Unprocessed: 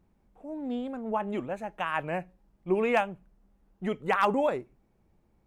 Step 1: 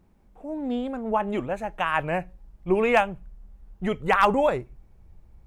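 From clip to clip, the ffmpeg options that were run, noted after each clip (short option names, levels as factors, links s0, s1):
-af "asubboost=boost=6:cutoff=100,volume=2"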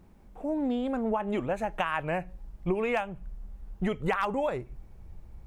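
-af "acompressor=threshold=0.0316:ratio=8,volume=1.68"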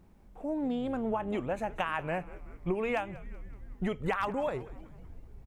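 -filter_complex "[0:a]asplit=6[s0][s1][s2][s3][s4][s5];[s1]adelay=188,afreqshift=-140,volume=0.126[s6];[s2]adelay=376,afreqshift=-280,volume=0.0759[s7];[s3]adelay=564,afreqshift=-420,volume=0.0452[s8];[s4]adelay=752,afreqshift=-560,volume=0.0272[s9];[s5]adelay=940,afreqshift=-700,volume=0.0164[s10];[s0][s6][s7][s8][s9][s10]amix=inputs=6:normalize=0,volume=0.708"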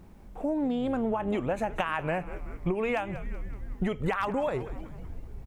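-af "acompressor=threshold=0.0224:ratio=6,volume=2.51"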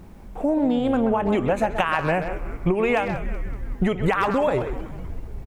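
-filter_complex "[0:a]asplit=2[s0][s1];[s1]adelay=130,highpass=300,lowpass=3400,asoftclip=type=hard:threshold=0.0708,volume=0.398[s2];[s0][s2]amix=inputs=2:normalize=0,volume=2.37"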